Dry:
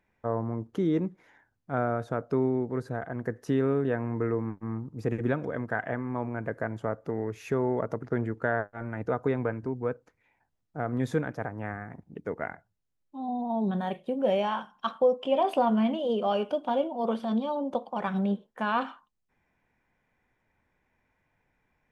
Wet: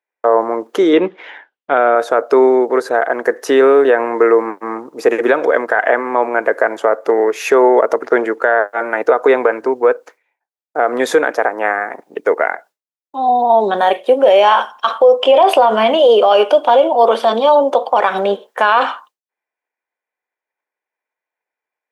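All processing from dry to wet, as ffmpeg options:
-filter_complex "[0:a]asettb=1/sr,asplit=3[a][b][c];[a]atrim=end=0.934[d];[b]atrim=start=0.93:end=1.95,asetpts=PTS-STARTPTS,afade=t=in:d=0.004:c=qsin,afade=t=out:st=1.016:d=0.004:c=qsin,lowpass=f=3.1k:t=q:w=3.3,lowshelf=f=240:g=8.5[e];[c]atrim=start=1.946[f];[d][e]acrossfade=d=0.004:c1=hsin:c2=qsin[g];[g][f]acrossfade=d=0.004:c1=qsin:c2=hsin,agate=range=-33dB:threshold=-54dB:ratio=3:detection=peak,highpass=f=410:w=0.5412,highpass=f=410:w=1.3066,alimiter=level_in=23.5dB:limit=-1dB:release=50:level=0:latency=1,volume=-1dB"

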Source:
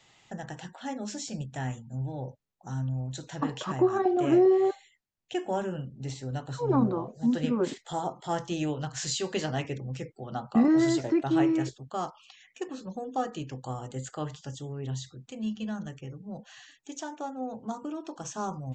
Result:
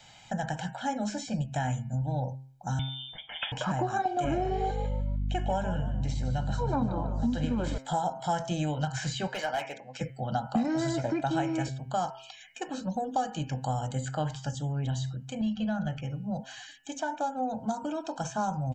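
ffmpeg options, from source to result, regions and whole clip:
-filter_complex "[0:a]asettb=1/sr,asplit=3[a][b][c];[a]atrim=end=2.794[d];[b]atrim=start=2.79:end=3.52,asetpts=PTS-STARTPTS,afade=t=in:d=0.004:c=qsin,afade=t=out:st=0.726:d=0.004:c=qsin,highpass=f=230:p=1,aeval=exprs='0.0631*(abs(mod(val(0)/0.0631+3,4)-2)-1)':c=same,lowpass=f=3.1k:t=q:w=0.5098,lowpass=f=3.1k:t=q:w=0.6013,lowpass=f=3.1k:t=q:w=0.9,lowpass=f=3.1k:t=q:w=2.563,afreqshift=-3700[e];[c]atrim=start=3.516[f];[d][e]acrossfade=d=0.004:c1=hsin:c2=qsin[g];[g][f]acrossfade=d=0.004:c1=qsin:c2=hsin,asettb=1/sr,asplit=3[h][i][j];[h]atrim=end=4.244[k];[i]atrim=start=4.24:end=7.78,asetpts=PTS-STARTPTS,afade=t=in:d=0.004:c=qsin,afade=t=out:st=3.536:d=0.004:c=qsin,lowpass=f=3.1k:p=1,asplit=4[l][m][n][o];[m]adelay=149,afreqshift=64,volume=-12.5dB[p];[n]adelay=298,afreqshift=128,volume=-22.4dB[q];[o]adelay=447,afreqshift=192,volume=-32.3dB[r];[l][p][q][r]amix=inputs=4:normalize=0,atrim=end_sample=156114,aeval=exprs='val(0)+0.0158*(sin(2*PI*50*n/s)+sin(2*PI*2*50*n/s)/2+sin(2*PI*3*50*n/s)/3+sin(2*PI*4*50*n/s)/4+sin(2*PI*5*50*n/s)/5)':c=same[s];[j]atrim=start=7.776[t];[k][s]acrossfade=d=0.004:c1=hsin:c2=qsin[u];[u][t]acrossfade=d=0.004:c1=qsin:c2=hsin,asettb=1/sr,asplit=3[v][w][x];[v]atrim=end=9.274[y];[w]atrim=start=9.27:end=10.01,asetpts=PTS-STARTPTS,afade=t=in:d=0.004:c=qsin,afade=t=out:st=0.736:d=0.004:c=qsin,highpass=590,lowpass=6.5k,volume=31dB,asoftclip=hard,volume=-31dB[z];[x]atrim=start=10.006[aa];[y][z]acrossfade=d=0.004:c1=hsin:c2=qsin[ab];[ab][aa]acrossfade=d=0.004:c1=qsin:c2=hsin,asettb=1/sr,asplit=3[ac][ad][ae];[ac]atrim=end=15.414[af];[ad]atrim=start=15.41:end=16.01,asetpts=PTS-STARTPTS,afade=t=in:d=0.004:c=qsin,afade=t=out:st=0.596:d=0.004:c=qsin,lowpass=3.4k,aecho=1:1:1.5:0.32,atrim=end_sample=26460,acompressor=mode=upward:threshold=-34dB:ratio=2.5:attack=3.2:release=140:knee=2.83:detection=peak[ag];[ae]atrim=start=16.006[ah];[af][ag]acrossfade=d=0.004:c1=hsin:c2=qsin[ai];[ai][ah]acrossfade=d=0.004:c1=qsin:c2=hsin,aecho=1:1:1.3:0.75,bandreject=f=132.7:t=h:w=4,bandreject=f=265.4:t=h:w=4,bandreject=f=398.1:t=h:w=4,bandreject=f=530.8:t=h:w=4,bandreject=f=663.5:t=h:w=4,bandreject=f=796.2:t=h:w=4,bandreject=f=928.9:t=h:w=4,bandreject=f=1.0616k:t=h:w=4,bandreject=f=1.1943k:t=h:w=4,bandreject=f=1.327k:t=h:w=4,bandreject=f=1.4597k:t=h:w=4,bandreject=f=1.5924k:t=h:w=4,bandreject=f=1.7251k:t=h:w=4,bandreject=f=1.8578k:t=h:w=4,bandreject=f=1.9905k:t=h:w=4,bandreject=f=2.1232k:t=h:w=4,bandreject=f=2.2559k:t=h:w=4,bandreject=f=2.3886k:t=h:w=4,bandreject=f=2.5213k:t=h:w=4,bandreject=f=2.654k:t=h:w=4,bandreject=f=2.7867k:t=h:w=4,bandreject=f=2.9194k:t=h:w=4,bandreject=f=3.0521k:t=h:w=4,acrossover=split=2500|5300[aj][ak][al];[aj]acompressor=threshold=-32dB:ratio=4[am];[ak]acompressor=threshold=-57dB:ratio=4[an];[al]acompressor=threshold=-53dB:ratio=4[ao];[am][an][ao]amix=inputs=3:normalize=0,volume=5.5dB"

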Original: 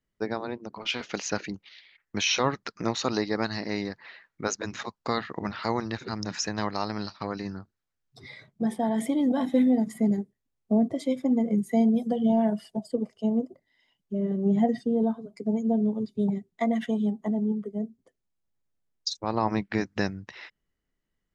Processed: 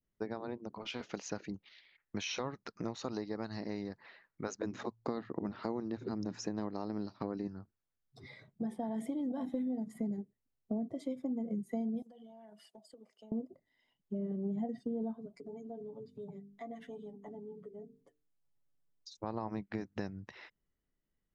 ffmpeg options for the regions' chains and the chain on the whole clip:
-filter_complex "[0:a]asettb=1/sr,asplit=3[a][b][c];[a]atrim=end=4.614[d];[b]atrim=start=4.61:end=7.48,asetpts=PTS-STARTPTS,afade=t=in:d=0.004:c=qsin,afade=t=out:st=2.866:d=0.004:c=qsin,equalizer=f=310:w=0.69:g=10.5,bandreject=f=57.1:t=h:w=4,bandreject=f=114.2:t=h:w=4[e];[c]atrim=start=7.476[f];[d][e]acrossfade=d=0.004:c1=hsin:c2=qsin[g];[g][f]acrossfade=d=0.004:c1=qsin:c2=hsin,asettb=1/sr,asplit=3[h][i][j];[h]atrim=end=12.024[k];[i]atrim=start=12.02:end=13.32,asetpts=PTS-STARTPTS,afade=t=in:d=0.004:c=qsin,afade=t=out:st=1.296:d=0.004:c=qsin,highpass=f=1.4k:p=1,acompressor=threshold=-46dB:ratio=16:attack=3.2:release=140:knee=1:detection=peak[l];[j]atrim=start=13.316[m];[k][l]acrossfade=d=0.004:c1=hsin:c2=qsin[n];[n][m]acrossfade=d=0.004:c1=qsin:c2=hsin,asettb=1/sr,asplit=3[o][p][q];[o]atrim=end=15.334[r];[p]atrim=start=15.33:end=19.14,asetpts=PTS-STARTPTS,afade=t=in:d=0.004:c=qsin,afade=t=out:st=3.806:d=0.004:c=qsin,bandreject=f=50:t=h:w=6,bandreject=f=100:t=h:w=6,bandreject=f=150:t=h:w=6,bandreject=f=200:t=h:w=6,bandreject=f=250:t=h:w=6,bandreject=f=300:t=h:w=6,bandreject=f=350:t=h:w=6,bandreject=f=400:t=h:w=6,bandreject=f=450:t=h:w=6,aecho=1:1:7:0.81,atrim=end_sample=168021,acompressor=threshold=-49dB:ratio=2:attack=3.2:release=140:knee=1:detection=peak[s];[q]atrim=start=19.136[t];[r][s]acrossfade=d=0.004:c1=hsin:c2=qsin[u];[u][t]acrossfade=d=0.004:c1=qsin:c2=hsin,tiltshelf=f=1.4k:g=3.5,acompressor=threshold=-28dB:ratio=4,adynamicequalizer=threshold=0.00316:dfrequency=2200:dqfactor=0.72:tfrequency=2200:tqfactor=0.72:attack=5:release=100:ratio=0.375:range=2:mode=cutabove:tftype=bell,volume=-7dB"

